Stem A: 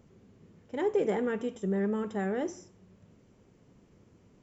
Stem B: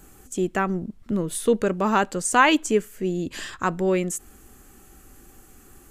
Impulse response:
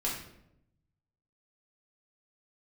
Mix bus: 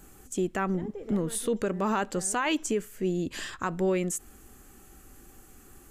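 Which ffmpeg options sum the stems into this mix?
-filter_complex "[0:a]volume=-13.5dB[link_01];[1:a]volume=-2.5dB[link_02];[link_01][link_02]amix=inputs=2:normalize=0,alimiter=limit=-18.5dB:level=0:latency=1:release=55"

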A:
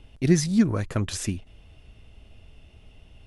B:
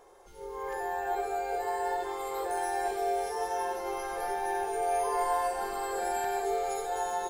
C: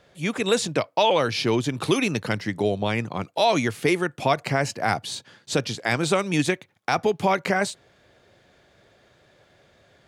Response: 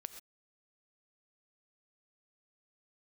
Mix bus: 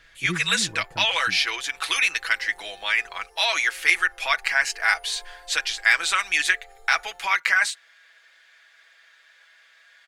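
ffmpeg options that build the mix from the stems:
-filter_complex "[0:a]volume=-15dB[link_01];[1:a]asubboost=boost=9:cutoff=68,volume=-19dB[link_02];[2:a]highpass=frequency=1700:width_type=q:width=2,volume=2dB[link_03];[link_01][link_02][link_03]amix=inputs=3:normalize=0,aecho=1:1:6.1:0.65"

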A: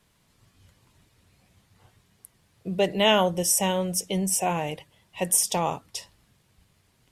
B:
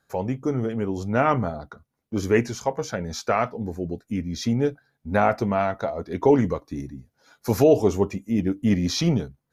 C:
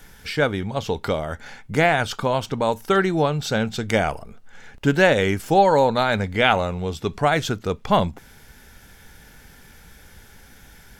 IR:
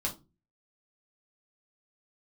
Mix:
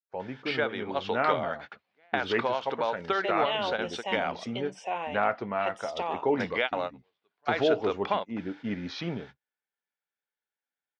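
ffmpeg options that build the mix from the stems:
-filter_complex "[0:a]agate=range=-33dB:threshold=-54dB:ratio=3:detection=peak,adelay=450,volume=-4dB[link_01];[1:a]highpass=frequency=320:poles=1,agate=range=-28dB:threshold=-45dB:ratio=16:detection=peak,adynamicequalizer=threshold=0.0178:dfrequency=1600:dqfactor=0.82:tfrequency=1600:tqfactor=0.82:attack=5:release=100:ratio=0.375:range=2.5:mode=boostabove:tftype=bell,volume=-7.5dB,asplit=2[link_02][link_03];[2:a]adelay=200,volume=-1dB,asplit=3[link_04][link_05][link_06];[link_04]atrim=end=4.65,asetpts=PTS-STARTPTS,afade=type=out:start_time=4.646:duration=0.004:curve=hsin[link_07];[link_05]atrim=start=4.65:end=6.37,asetpts=PTS-STARTPTS,volume=0[link_08];[link_06]atrim=start=6.37,asetpts=PTS-STARTPTS,afade=type=in:duration=0.004:curve=hsin[link_09];[link_07][link_08][link_09]concat=n=3:v=0:a=1[link_10];[link_03]apad=whole_len=493582[link_11];[link_10][link_11]sidechaingate=range=-42dB:threshold=-45dB:ratio=16:detection=peak[link_12];[link_01][link_12]amix=inputs=2:normalize=0,highpass=500,acompressor=threshold=-24dB:ratio=6,volume=0dB[link_13];[link_02][link_13]amix=inputs=2:normalize=0,lowpass=frequency=3900:width=0.5412,lowpass=frequency=3900:width=1.3066"

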